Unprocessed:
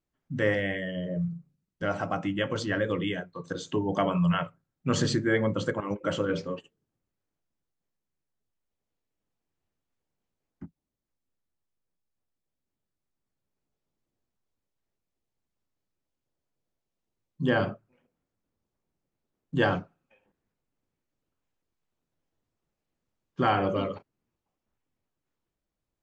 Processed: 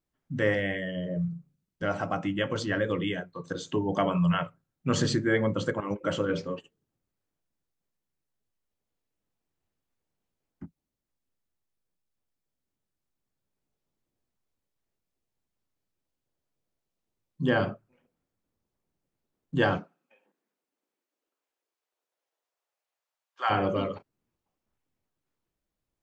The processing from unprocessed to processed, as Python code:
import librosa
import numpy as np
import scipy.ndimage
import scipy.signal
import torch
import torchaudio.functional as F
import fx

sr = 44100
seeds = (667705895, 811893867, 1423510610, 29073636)

y = fx.highpass(x, sr, hz=fx.line((19.77, 180.0), (23.49, 740.0)), slope=24, at=(19.77, 23.49), fade=0.02)